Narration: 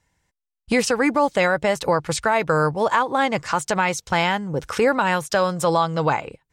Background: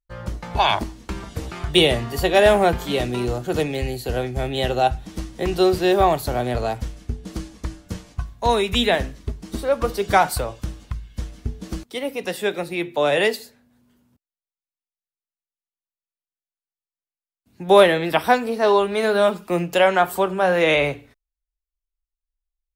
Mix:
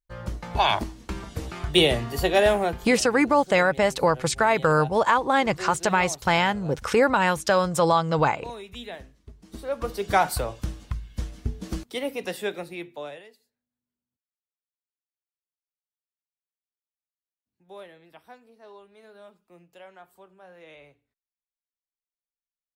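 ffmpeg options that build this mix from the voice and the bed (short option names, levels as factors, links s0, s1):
-filter_complex "[0:a]adelay=2150,volume=0.891[s0];[1:a]volume=5.62,afade=t=out:st=2.26:d=0.77:silence=0.149624,afade=t=in:st=9.26:d=1.36:silence=0.125893,afade=t=out:st=11.86:d=1.37:silence=0.0334965[s1];[s0][s1]amix=inputs=2:normalize=0"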